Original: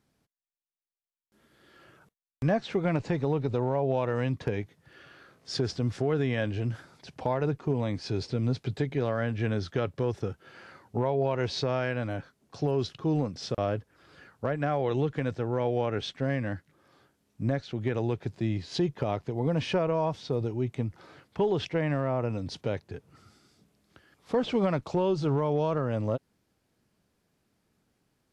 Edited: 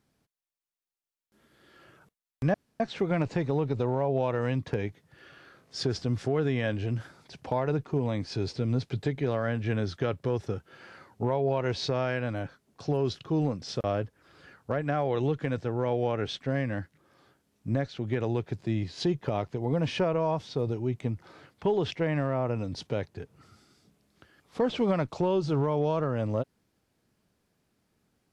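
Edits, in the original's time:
2.54 s: insert room tone 0.26 s

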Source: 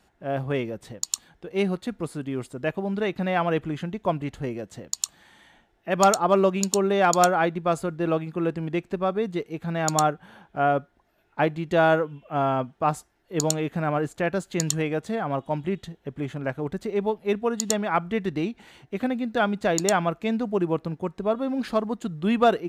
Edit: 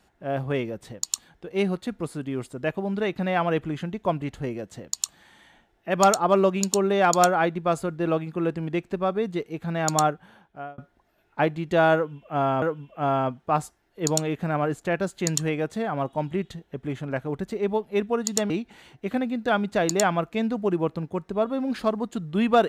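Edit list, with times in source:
10.06–10.78 s: fade out
11.95–12.62 s: loop, 2 plays
17.83–18.39 s: delete

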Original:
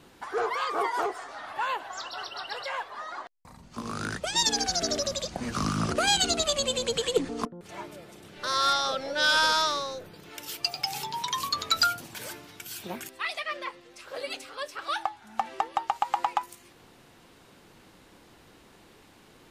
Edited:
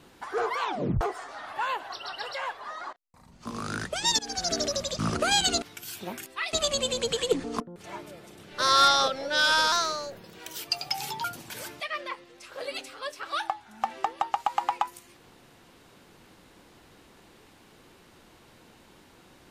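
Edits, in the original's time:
0.59 s: tape stop 0.42 s
1.92–2.23 s: delete
3.24–3.83 s: fade in, from -22.5 dB
4.50–4.80 s: fade in, from -16.5 dB
5.30–5.75 s: delete
8.45–8.93 s: gain +5 dB
9.57–10.51 s: speed 109%
11.17–11.89 s: delete
12.45–13.36 s: move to 6.38 s

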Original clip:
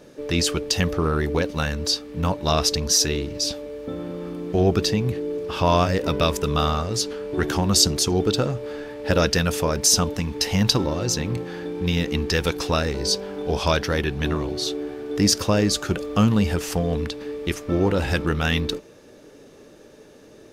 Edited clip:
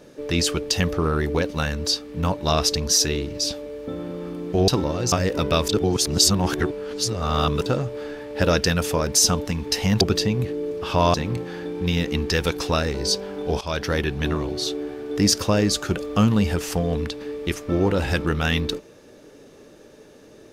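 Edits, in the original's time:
4.68–5.81 s: swap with 10.70–11.14 s
6.38–8.35 s: reverse
13.61–13.89 s: fade in, from -16.5 dB

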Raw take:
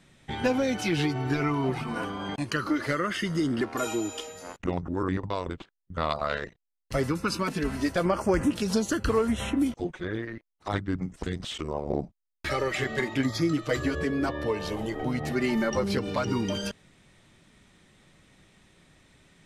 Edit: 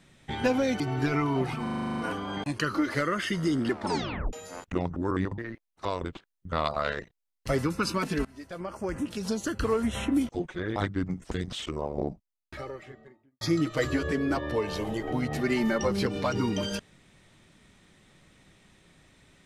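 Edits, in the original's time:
0.80–1.08 s: delete
1.90 s: stutter 0.04 s, 10 plays
3.65 s: tape stop 0.60 s
7.70–9.63 s: fade in, from -22.5 dB
10.21–10.68 s: move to 5.30 s
11.43–13.33 s: studio fade out

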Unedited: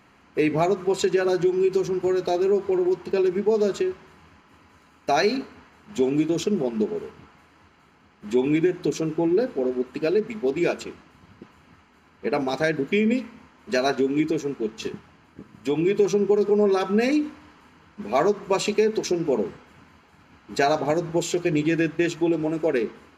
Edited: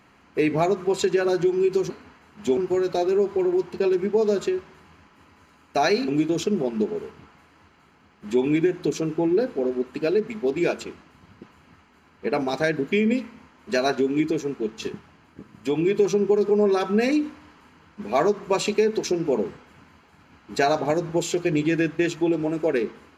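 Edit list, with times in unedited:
5.41–6.08 s: move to 1.90 s

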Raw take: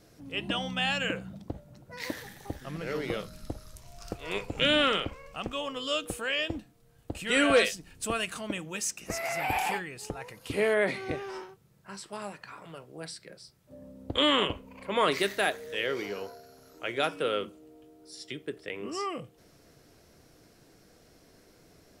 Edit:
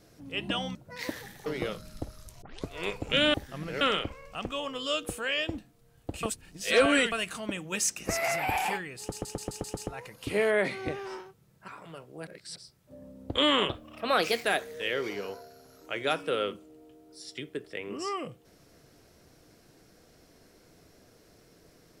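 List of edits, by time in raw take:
0.75–1.76 s: delete
2.47–2.94 s: move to 4.82 s
3.90 s: tape start 0.26 s
7.24–8.13 s: reverse
8.73–9.37 s: gain +4 dB
10.00 s: stutter 0.13 s, 7 plays
11.91–12.48 s: delete
13.07–13.36 s: reverse
14.49–15.37 s: speed 117%

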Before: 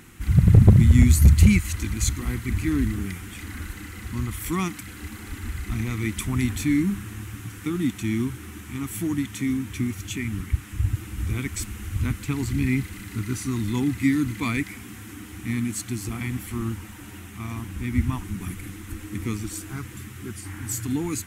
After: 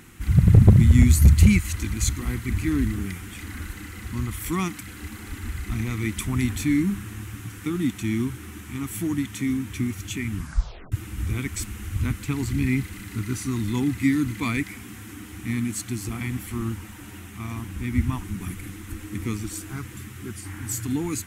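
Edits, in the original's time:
10.36 s: tape stop 0.56 s

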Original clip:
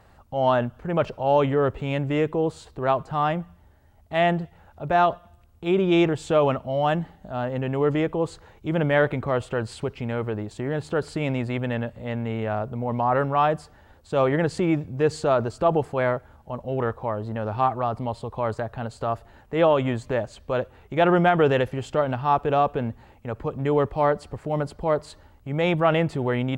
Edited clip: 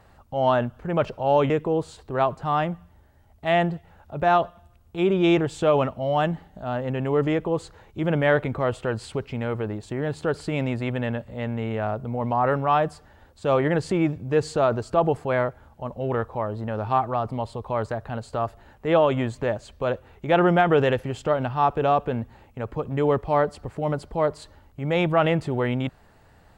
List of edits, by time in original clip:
1.50–2.18 s: delete

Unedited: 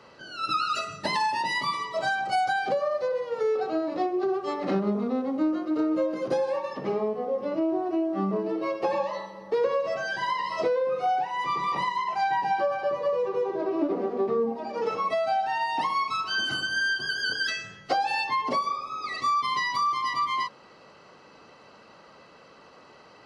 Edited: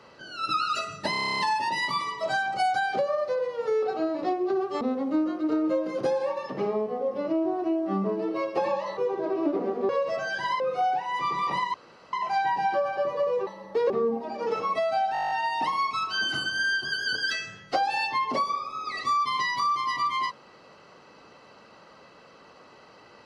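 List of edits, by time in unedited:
1.11 s: stutter 0.03 s, 10 plays
4.54–5.08 s: delete
9.24–9.67 s: swap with 13.33–14.25 s
10.38–10.85 s: delete
11.99 s: insert room tone 0.39 s
15.48 s: stutter 0.02 s, 10 plays

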